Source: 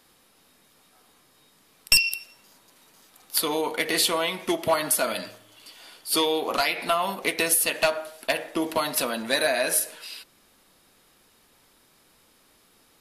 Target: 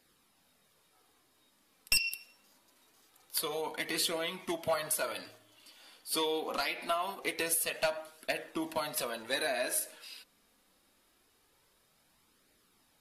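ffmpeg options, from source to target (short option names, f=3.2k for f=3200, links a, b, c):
-af "flanger=delay=0.4:depth=4:regen=-41:speed=0.24:shape=triangular,volume=-5.5dB"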